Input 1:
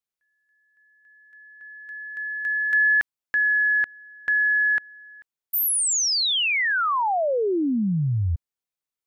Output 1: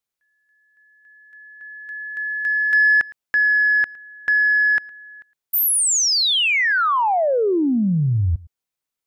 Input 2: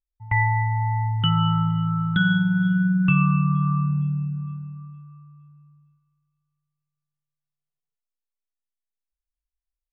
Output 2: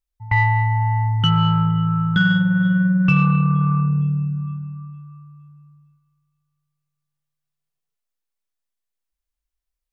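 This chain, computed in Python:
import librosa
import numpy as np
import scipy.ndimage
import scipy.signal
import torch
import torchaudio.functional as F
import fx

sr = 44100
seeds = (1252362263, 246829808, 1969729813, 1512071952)

p1 = 10.0 ** (-16.5 / 20.0) * np.tanh(x / 10.0 ** (-16.5 / 20.0))
p2 = x + (p1 * 10.0 ** (-3.0 / 20.0))
y = p2 + 10.0 ** (-22.0 / 20.0) * np.pad(p2, (int(111 * sr / 1000.0), 0))[:len(p2)]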